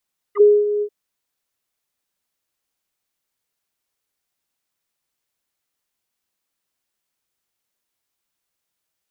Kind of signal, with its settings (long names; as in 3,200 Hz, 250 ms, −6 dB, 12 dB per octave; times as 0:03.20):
subtractive voice square G#4 24 dB per octave, low-pass 450 Hz, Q 6.6, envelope 2.5 octaves, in 0.05 s, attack 49 ms, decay 0.25 s, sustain −11.5 dB, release 0.07 s, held 0.47 s